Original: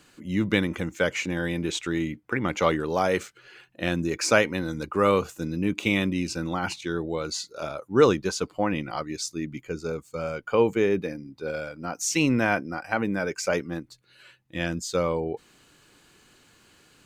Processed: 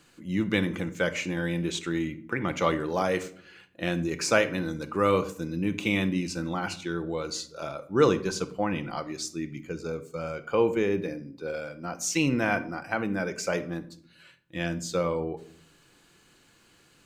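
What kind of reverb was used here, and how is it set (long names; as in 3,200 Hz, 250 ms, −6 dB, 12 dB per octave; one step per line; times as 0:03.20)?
rectangular room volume 780 cubic metres, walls furnished, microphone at 0.76 metres
level −3 dB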